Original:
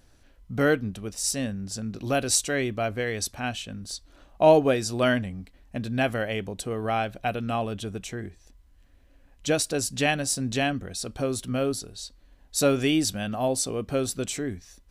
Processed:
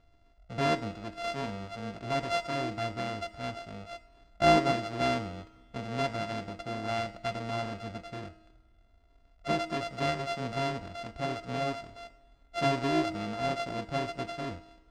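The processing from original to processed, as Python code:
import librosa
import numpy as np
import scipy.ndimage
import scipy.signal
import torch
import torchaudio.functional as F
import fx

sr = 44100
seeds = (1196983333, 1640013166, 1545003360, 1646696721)

y = np.r_[np.sort(x[:len(x) // 64 * 64].reshape(-1, 64), axis=1).ravel(), x[len(x) // 64 * 64:]]
y = fx.air_absorb(y, sr, metres=120.0)
y = fx.comb_fb(y, sr, f0_hz=320.0, decay_s=0.98, harmonics='all', damping=0.0, mix_pct=70)
y = fx.rev_double_slope(y, sr, seeds[0], early_s=0.36, late_s=2.1, knee_db=-17, drr_db=12.5)
y = y * 10.0 ** (4.5 / 20.0)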